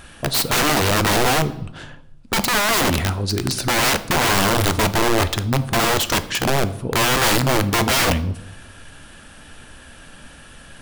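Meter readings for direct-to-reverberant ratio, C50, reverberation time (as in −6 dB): 11.5 dB, 15.5 dB, 0.80 s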